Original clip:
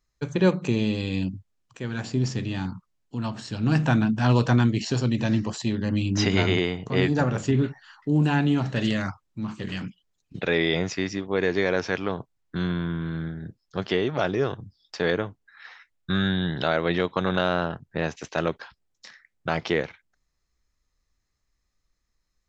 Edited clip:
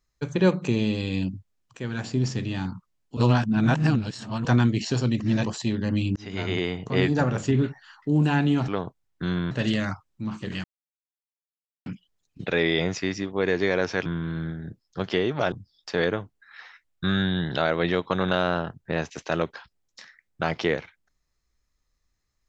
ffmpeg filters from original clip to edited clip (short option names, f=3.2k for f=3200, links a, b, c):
-filter_complex "[0:a]asplit=11[a][b][c][d][e][f][g][h][i][j][k];[a]atrim=end=3.172[l];[b]atrim=start=3.168:end=4.452,asetpts=PTS-STARTPTS,areverse[m];[c]atrim=start=4.448:end=5.202[n];[d]atrim=start=5.198:end=5.462,asetpts=PTS-STARTPTS,areverse[o];[e]atrim=start=5.458:end=6.16,asetpts=PTS-STARTPTS,afade=t=out:st=0.698:d=0.004:c=hsin[p];[f]atrim=start=6.16:end=8.682,asetpts=PTS-STARTPTS,afade=t=in:d=0.62[q];[g]atrim=start=12.008:end=12.842[r];[h]atrim=start=8.678:end=9.81,asetpts=PTS-STARTPTS,afade=t=out:st=1.128:d=0.004:c=hsin,apad=pad_dur=1.22[s];[i]atrim=start=9.81:end=12.012,asetpts=PTS-STARTPTS,afade=t=in:d=0.004:c=hsin[t];[j]atrim=start=12.838:end=14.302[u];[k]atrim=start=14.578[v];[l][m]acrossfade=d=0.004:c1=hsin:c2=hsin[w];[w][n]acrossfade=d=0.004:c1=hsin:c2=hsin[x];[x][o]acrossfade=d=0.004:c1=hsin:c2=hsin[y];[p][q]concat=n=2:v=0:a=1[z];[y][z]acrossfade=d=0.004:c1=hsin:c2=hsin[aa];[aa][r]acrossfade=d=0.004:c1=hsin:c2=hsin[ab];[s][t]concat=n=2:v=0:a=1[ac];[ab][ac]acrossfade=d=0.004:c1=hsin:c2=hsin[ad];[ad][u]acrossfade=d=0.004:c1=hsin:c2=hsin[ae];[ae][v]acrossfade=d=0.004:c1=hsin:c2=hsin"